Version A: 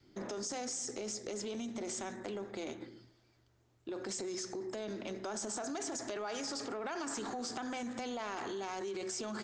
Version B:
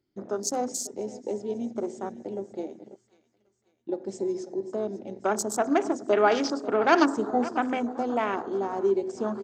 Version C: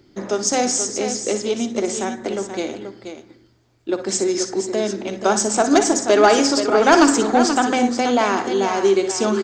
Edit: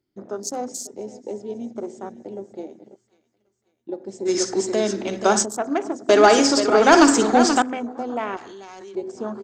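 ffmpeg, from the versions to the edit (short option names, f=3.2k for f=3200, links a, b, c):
-filter_complex "[2:a]asplit=2[a][b];[1:a]asplit=4[c][d][e][f];[c]atrim=end=4.29[g];[a]atrim=start=4.25:end=5.46[h];[d]atrim=start=5.42:end=6.092[i];[b]atrim=start=6.088:end=7.622[j];[e]atrim=start=7.618:end=8.372[k];[0:a]atrim=start=8.368:end=8.952[l];[f]atrim=start=8.948[m];[g][h]acrossfade=d=0.04:c1=tri:c2=tri[n];[n][i]acrossfade=d=0.04:c1=tri:c2=tri[o];[o][j]acrossfade=d=0.004:c1=hsin:c2=hsin[p];[p][k]acrossfade=d=0.004:c1=hsin:c2=hsin[q];[q][l]acrossfade=d=0.004:c1=hsin:c2=hsin[r];[r][m]acrossfade=d=0.004:c1=hsin:c2=hsin"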